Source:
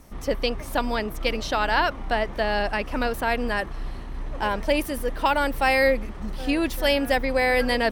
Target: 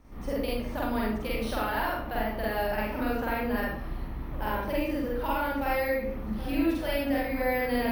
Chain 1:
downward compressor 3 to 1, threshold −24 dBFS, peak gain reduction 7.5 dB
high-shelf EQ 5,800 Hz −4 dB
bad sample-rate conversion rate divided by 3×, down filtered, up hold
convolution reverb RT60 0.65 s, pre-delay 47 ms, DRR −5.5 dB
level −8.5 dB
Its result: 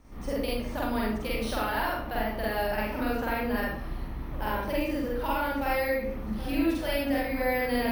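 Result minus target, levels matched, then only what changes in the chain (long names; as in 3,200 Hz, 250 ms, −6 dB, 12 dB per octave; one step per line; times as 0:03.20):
8,000 Hz band +3.0 dB
change: high-shelf EQ 5,800 Hz −12 dB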